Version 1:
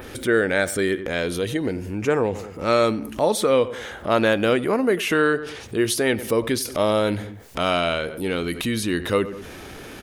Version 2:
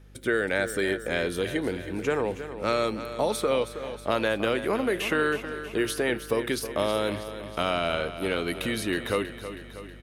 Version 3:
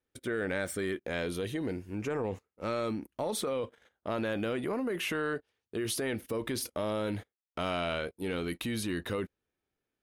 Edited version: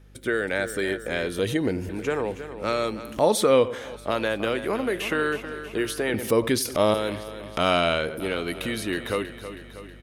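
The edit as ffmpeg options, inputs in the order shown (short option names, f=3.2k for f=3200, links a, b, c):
-filter_complex "[0:a]asplit=4[a][b][c][d];[1:a]asplit=5[e][f][g][h][i];[e]atrim=end=1.392[j];[a]atrim=start=1.388:end=1.892[k];[f]atrim=start=1.888:end=3.21[l];[b]atrim=start=2.97:end=3.96[m];[g]atrim=start=3.72:end=6.142[n];[c]atrim=start=6.138:end=6.942[o];[h]atrim=start=6.938:end=7.572[p];[d]atrim=start=7.568:end=8.202[q];[i]atrim=start=8.198[r];[j][k]acrossfade=d=0.004:c1=hsin:c2=hsin[s];[s][l]acrossfade=d=0.004:c1=hsin:c2=hsin[t];[t][m]acrossfade=d=0.24:c1=tri:c2=tri[u];[u][n]acrossfade=d=0.24:c1=tri:c2=tri[v];[v][o]acrossfade=d=0.004:c1=hsin:c2=hsin[w];[w][p]acrossfade=d=0.004:c1=hsin:c2=hsin[x];[x][q]acrossfade=d=0.004:c1=hsin:c2=hsin[y];[y][r]acrossfade=d=0.004:c1=hsin:c2=hsin"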